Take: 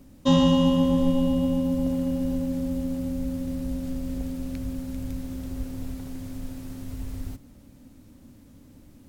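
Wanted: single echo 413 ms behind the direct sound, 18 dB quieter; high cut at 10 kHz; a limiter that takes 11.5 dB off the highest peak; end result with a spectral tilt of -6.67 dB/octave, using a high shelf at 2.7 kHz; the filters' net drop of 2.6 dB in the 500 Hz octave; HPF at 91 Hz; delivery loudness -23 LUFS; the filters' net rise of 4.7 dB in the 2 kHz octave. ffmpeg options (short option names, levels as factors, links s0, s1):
-af "highpass=91,lowpass=10000,equalizer=f=500:t=o:g=-3,equalizer=f=2000:t=o:g=8,highshelf=f=2700:g=-4,alimiter=limit=0.1:level=0:latency=1,aecho=1:1:413:0.126,volume=2.37"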